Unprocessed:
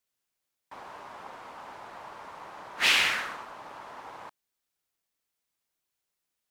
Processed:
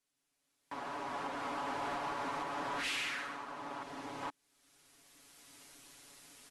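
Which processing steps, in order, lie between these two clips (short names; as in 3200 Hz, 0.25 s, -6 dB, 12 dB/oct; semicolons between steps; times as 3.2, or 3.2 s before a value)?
recorder AGC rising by 12 dB/s; bell 280 Hz +8.5 dB 0.53 oct; comb 7.1 ms, depth 67%; 3.83–4.23 bell 1100 Hz -9 dB 2.2 oct; compressor 1.5:1, threshold -51 dBFS, peak gain reduction 12 dB; hard clip -31.5 dBFS, distortion -14 dB; brick-wall FIR low-pass 12000 Hz; gain -2 dB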